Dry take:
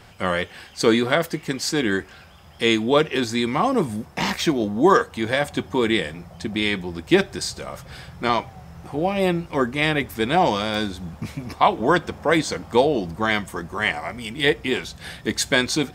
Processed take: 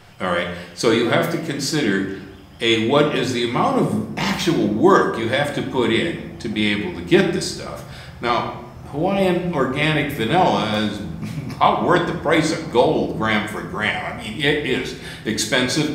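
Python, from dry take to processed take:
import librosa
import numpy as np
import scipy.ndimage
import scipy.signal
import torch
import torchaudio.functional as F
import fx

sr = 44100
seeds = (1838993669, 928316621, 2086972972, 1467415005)

y = fx.room_shoebox(x, sr, seeds[0], volume_m3=280.0, walls='mixed', distance_m=0.86)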